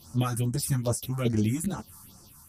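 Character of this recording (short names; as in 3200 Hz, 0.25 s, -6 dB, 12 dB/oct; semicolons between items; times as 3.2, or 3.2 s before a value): phasing stages 4, 2.4 Hz, lowest notch 460–3400 Hz; tremolo saw down 1.6 Hz, depth 40%; a shimmering, thickened sound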